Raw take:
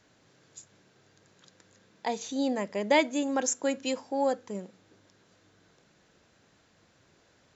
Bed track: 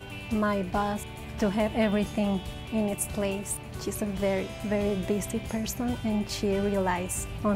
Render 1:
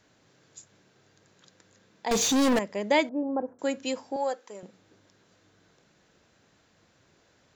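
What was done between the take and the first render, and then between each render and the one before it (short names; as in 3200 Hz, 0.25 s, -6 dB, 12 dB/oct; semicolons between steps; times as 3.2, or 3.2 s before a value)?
2.11–2.59 sample leveller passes 5; 3.09–3.59 LPF 1000 Hz 24 dB/oct; 4.16–4.63 HPF 500 Hz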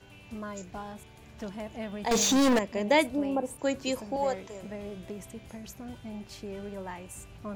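add bed track -12.5 dB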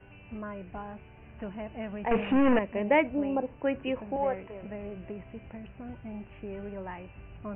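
Chebyshev low-pass 2900 Hz, order 8; low shelf 72 Hz +6.5 dB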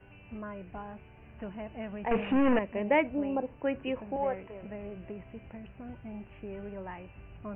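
gain -2 dB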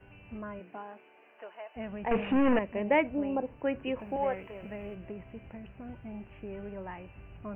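0.59–1.75 HPF 190 Hz -> 620 Hz 24 dB/oct; 3.99–4.95 high shelf 2600 Hz +10.5 dB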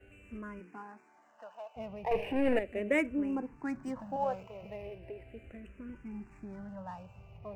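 median filter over 9 samples; endless phaser -0.37 Hz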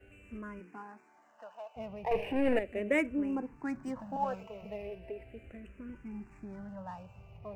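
4.12–5.25 comb 4.5 ms, depth 58%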